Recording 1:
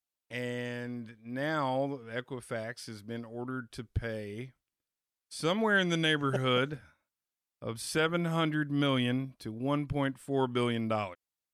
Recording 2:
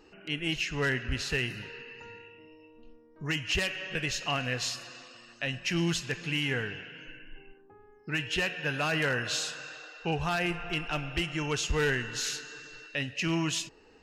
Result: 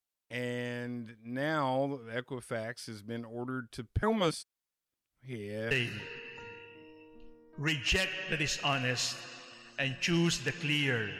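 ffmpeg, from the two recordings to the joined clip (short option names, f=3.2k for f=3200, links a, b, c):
-filter_complex "[0:a]apad=whole_dur=11.19,atrim=end=11.19,asplit=2[a][b];[a]atrim=end=4.032[c];[b]atrim=start=4.028:end=5.712,asetpts=PTS-STARTPTS,areverse[d];[1:a]atrim=start=1.338:end=6.82[e];[c][d]acrossfade=d=0.004:c1=hsin:c2=hsin[f];[f][e]acrossfade=d=0.004:c1=hsin:c2=hsin"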